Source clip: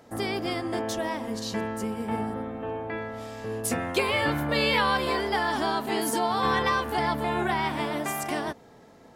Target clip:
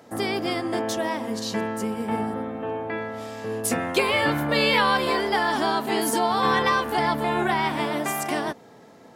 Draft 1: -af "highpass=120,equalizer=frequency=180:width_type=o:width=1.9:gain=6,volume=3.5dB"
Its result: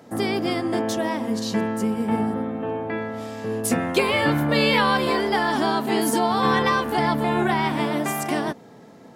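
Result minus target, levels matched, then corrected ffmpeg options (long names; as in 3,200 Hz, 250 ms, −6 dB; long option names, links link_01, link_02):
250 Hz band +3.0 dB
-af "highpass=120,volume=3.5dB"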